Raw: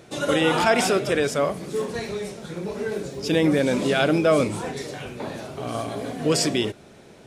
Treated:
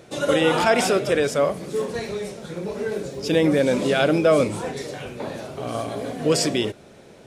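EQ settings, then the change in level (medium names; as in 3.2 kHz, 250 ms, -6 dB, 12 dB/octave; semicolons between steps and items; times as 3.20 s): peaking EQ 530 Hz +4 dB 0.42 oct; 0.0 dB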